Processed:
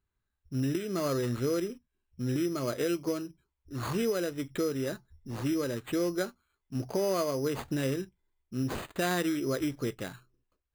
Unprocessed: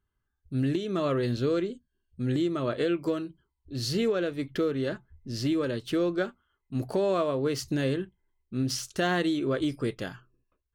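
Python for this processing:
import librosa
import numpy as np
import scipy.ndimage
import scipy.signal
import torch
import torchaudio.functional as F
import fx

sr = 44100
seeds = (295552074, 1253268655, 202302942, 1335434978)

y = np.repeat(x[::8], 8)[:len(x)]
y = y * librosa.db_to_amplitude(-3.0)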